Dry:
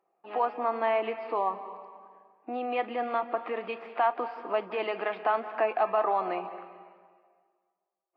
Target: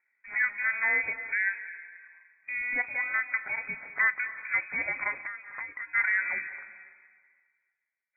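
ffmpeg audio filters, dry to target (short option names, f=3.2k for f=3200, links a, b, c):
-filter_complex "[0:a]asplit=3[a][b][c];[a]afade=t=out:st=5.21:d=0.02[d];[b]acompressor=threshold=-35dB:ratio=16,afade=t=in:st=5.21:d=0.02,afade=t=out:st=5.94:d=0.02[e];[c]afade=t=in:st=5.94:d=0.02[f];[d][e][f]amix=inputs=3:normalize=0,lowpass=f=2.3k:t=q:w=0.5098,lowpass=f=2.3k:t=q:w=0.6013,lowpass=f=2.3k:t=q:w=0.9,lowpass=f=2.3k:t=q:w=2.563,afreqshift=-2700"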